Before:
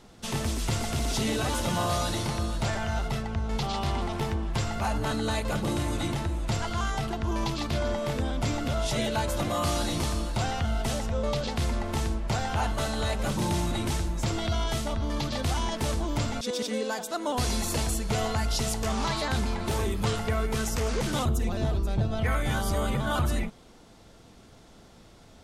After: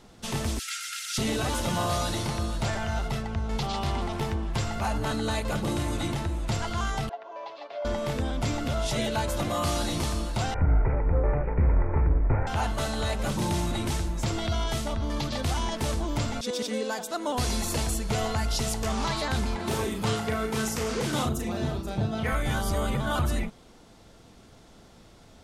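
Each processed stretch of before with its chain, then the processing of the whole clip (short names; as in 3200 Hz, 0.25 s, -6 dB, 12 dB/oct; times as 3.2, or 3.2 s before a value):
0.59–1.18 Chebyshev high-pass 1300 Hz, order 8 + comb 3.7 ms, depth 81%
7.09–7.85 ladder high-pass 510 Hz, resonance 55% + air absorption 230 m + comb 7.2 ms, depth 59%
10.54–12.47 minimum comb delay 2.1 ms + steep low-pass 2400 Hz 96 dB/oct + tilt -2 dB/oct
19.56–22.33 HPF 110 Hz + doubler 37 ms -5 dB
whole clip: dry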